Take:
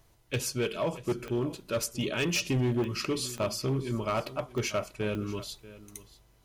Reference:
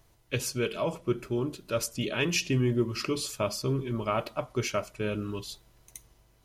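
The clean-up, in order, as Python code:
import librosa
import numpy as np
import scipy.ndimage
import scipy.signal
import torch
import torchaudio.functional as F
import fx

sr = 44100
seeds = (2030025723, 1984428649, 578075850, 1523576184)

y = fx.fix_declip(x, sr, threshold_db=-23.0)
y = fx.fix_declick_ar(y, sr, threshold=10.0)
y = fx.fix_echo_inverse(y, sr, delay_ms=637, level_db=-18.0)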